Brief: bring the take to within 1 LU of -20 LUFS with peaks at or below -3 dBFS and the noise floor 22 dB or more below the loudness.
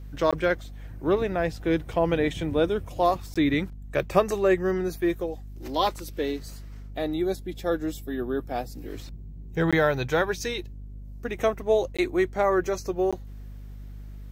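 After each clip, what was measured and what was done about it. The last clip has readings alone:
dropouts 5; longest dropout 16 ms; hum 50 Hz; harmonics up to 250 Hz; hum level -38 dBFS; loudness -26.5 LUFS; peak -6.5 dBFS; loudness target -20.0 LUFS
-> interpolate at 0.31/3.34/9.71/11.97/13.11, 16 ms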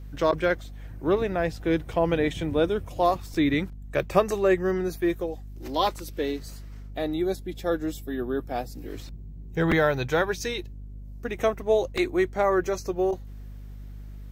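dropouts 0; hum 50 Hz; harmonics up to 250 Hz; hum level -38 dBFS
-> de-hum 50 Hz, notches 5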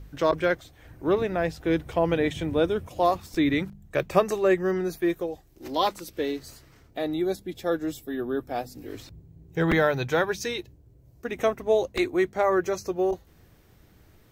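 hum none; loudness -26.5 LUFS; peak -7.0 dBFS; loudness target -20.0 LUFS
-> gain +6.5 dB; limiter -3 dBFS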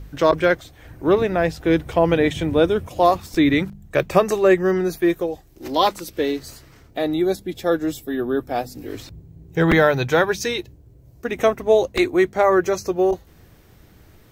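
loudness -20.0 LUFS; peak -3.0 dBFS; noise floor -50 dBFS

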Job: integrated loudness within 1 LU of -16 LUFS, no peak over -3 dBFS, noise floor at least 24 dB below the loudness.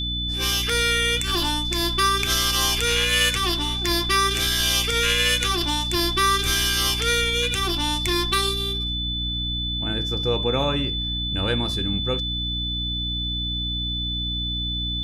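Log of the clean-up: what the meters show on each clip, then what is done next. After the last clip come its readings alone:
hum 60 Hz; harmonics up to 300 Hz; hum level -27 dBFS; steady tone 3500 Hz; tone level -26 dBFS; loudness -21.5 LUFS; peak -7.0 dBFS; loudness target -16.0 LUFS
-> notches 60/120/180/240/300 Hz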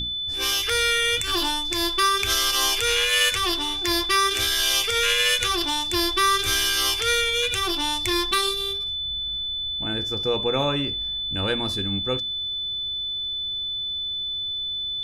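hum none; steady tone 3500 Hz; tone level -26 dBFS
-> notch 3500 Hz, Q 30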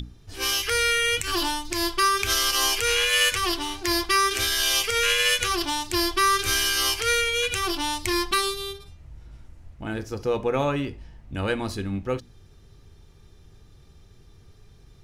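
steady tone none; loudness -23.0 LUFS; peak -9.0 dBFS; loudness target -16.0 LUFS
-> gain +7 dB; limiter -3 dBFS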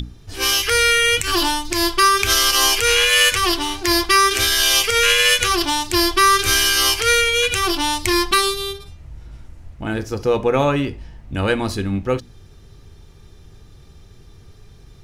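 loudness -16.0 LUFS; peak -3.0 dBFS; noise floor -45 dBFS

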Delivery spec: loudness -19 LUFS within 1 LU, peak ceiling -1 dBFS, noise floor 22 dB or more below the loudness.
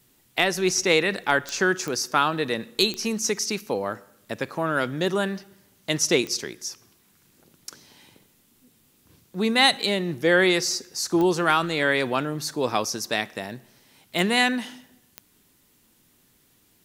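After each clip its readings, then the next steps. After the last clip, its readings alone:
clicks 7; loudness -23.5 LUFS; peak -4.0 dBFS; loudness target -19.0 LUFS
-> de-click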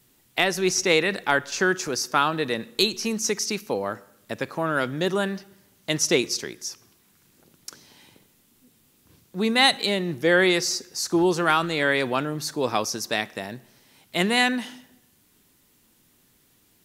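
clicks 0; loudness -23.5 LUFS; peak -4.0 dBFS; loudness target -19.0 LUFS
-> gain +4.5 dB; limiter -1 dBFS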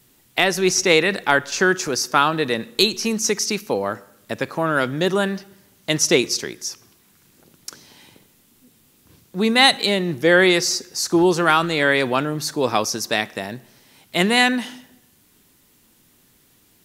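loudness -19.0 LUFS; peak -1.0 dBFS; noise floor -58 dBFS

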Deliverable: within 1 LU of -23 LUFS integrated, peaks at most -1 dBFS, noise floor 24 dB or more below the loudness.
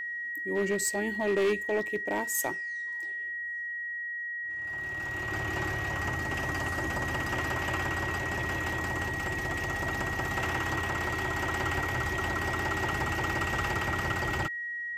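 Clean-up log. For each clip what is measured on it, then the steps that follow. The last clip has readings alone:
clipped 0.6%; flat tops at -22.0 dBFS; steady tone 1900 Hz; tone level -33 dBFS; loudness -30.5 LUFS; peak -22.0 dBFS; loudness target -23.0 LUFS
-> clip repair -22 dBFS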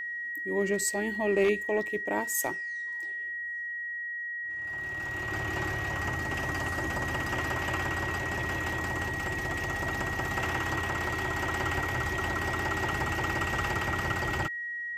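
clipped 0.0%; steady tone 1900 Hz; tone level -33 dBFS
-> notch 1900 Hz, Q 30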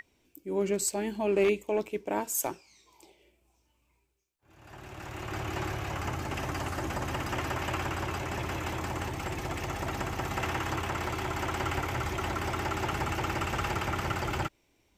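steady tone none; loudness -32.5 LUFS; peak -14.5 dBFS; loudness target -23.0 LUFS
-> gain +9.5 dB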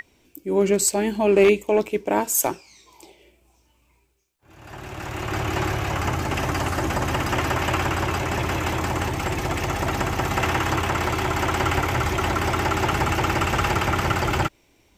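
loudness -23.0 LUFS; peak -5.0 dBFS; noise floor -62 dBFS

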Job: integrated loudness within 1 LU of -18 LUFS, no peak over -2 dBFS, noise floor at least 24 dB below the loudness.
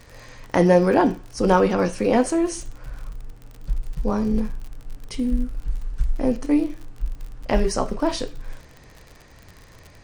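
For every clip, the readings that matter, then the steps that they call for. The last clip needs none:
ticks 57/s; loudness -22.5 LUFS; peak -3.5 dBFS; loudness target -18.0 LUFS
-> de-click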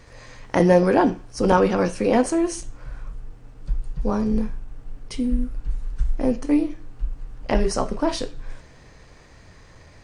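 ticks 0/s; loudness -22.5 LUFS; peak -3.5 dBFS; loudness target -18.0 LUFS
-> gain +4.5 dB; limiter -2 dBFS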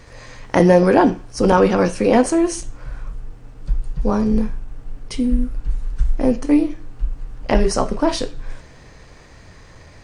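loudness -18.5 LUFS; peak -2.0 dBFS; noise floor -44 dBFS

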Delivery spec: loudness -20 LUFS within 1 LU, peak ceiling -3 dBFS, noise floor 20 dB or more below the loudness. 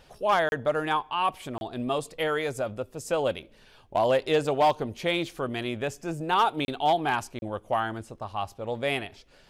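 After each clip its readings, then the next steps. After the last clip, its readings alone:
clipped 0.3%; flat tops at -15.5 dBFS; dropouts 4; longest dropout 31 ms; loudness -28.0 LUFS; peak -15.5 dBFS; loudness target -20.0 LUFS
-> clip repair -15.5 dBFS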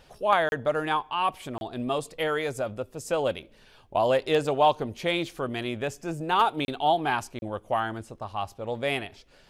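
clipped 0.0%; dropouts 4; longest dropout 31 ms
-> interpolate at 0.49/1.58/6.65/7.39, 31 ms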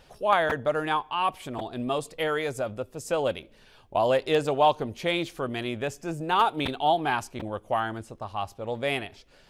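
dropouts 0; loudness -27.5 LUFS; peak -6.5 dBFS; loudness target -20.0 LUFS
-> gain +7.5 dB; limiter -3 dBFS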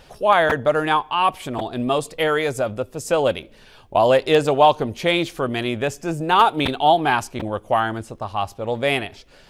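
loudness -20.0 LUFS; peak -3.0 dBFS; noise floor -49 dBFS

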